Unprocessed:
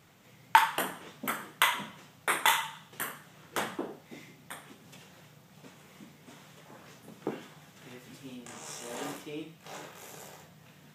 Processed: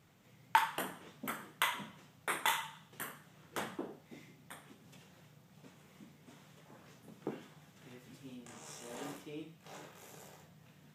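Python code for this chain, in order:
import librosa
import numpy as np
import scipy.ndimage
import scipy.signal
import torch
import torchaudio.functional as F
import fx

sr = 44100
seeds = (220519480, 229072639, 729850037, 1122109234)

y = fx.low_shelf(x, sr, hz=320.0, db=5.0)
y = y * 10.0 ** (-8.0 / 20.0)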